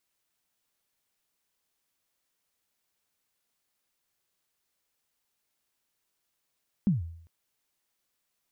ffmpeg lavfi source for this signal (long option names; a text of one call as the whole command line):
ffmpeg -f lavfi -i "aevalsrc='0.126*pow(10,-3*t/0.66)*sin(2*PI*(220*0.149/log(83/220)*(exp(log(83/220)*min(t,0.149)/0.149)-1)+83*max(t-0.149,0)))':duration=0.4:sample_rate=44100" out.wav